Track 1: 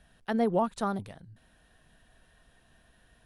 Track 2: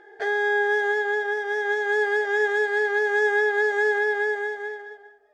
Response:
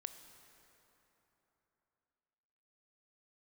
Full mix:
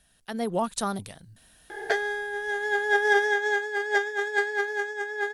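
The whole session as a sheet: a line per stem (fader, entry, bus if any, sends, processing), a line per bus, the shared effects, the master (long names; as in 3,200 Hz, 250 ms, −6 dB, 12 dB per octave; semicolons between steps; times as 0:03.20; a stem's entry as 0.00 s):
−7.0 dB, 0.00 s, no send, parametric band 8,900 Hz +6.5 dB 2.8 octaves
+2.0 dB, 1.70 s, no send, compressor whose output falls as the input rises −29 dBFS, ratio −0.5; tuned comb filter 280 Hz, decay 0.84 s, mix 50%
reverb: not used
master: high-shelf EQ 3,800 Hz +10 dB; automatic gain control gain up to 7.5 dB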